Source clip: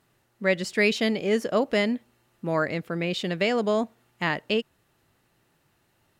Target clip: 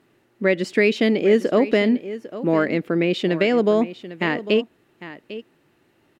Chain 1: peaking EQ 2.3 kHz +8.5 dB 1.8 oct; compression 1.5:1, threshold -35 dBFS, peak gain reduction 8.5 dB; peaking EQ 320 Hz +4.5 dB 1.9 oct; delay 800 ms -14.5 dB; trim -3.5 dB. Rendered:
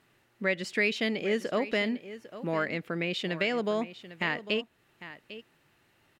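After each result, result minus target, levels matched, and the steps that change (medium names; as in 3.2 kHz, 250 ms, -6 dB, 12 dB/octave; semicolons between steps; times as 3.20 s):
compression: peak gain reduction +4 dB; 250 Hz band -2.5 dB
change: compression 1.5:1, threshold -23 dBFS, peak gain reduction 4.5 dB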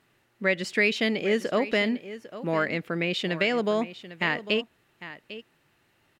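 250 Hz band -3.0 dB
change: second peaking EQ 320 Hz +16 dB 1.9 oct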